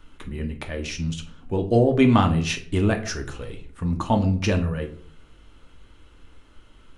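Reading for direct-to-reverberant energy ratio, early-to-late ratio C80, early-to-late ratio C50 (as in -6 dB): 3.5 dB, 16.5 dB, 12.5 dB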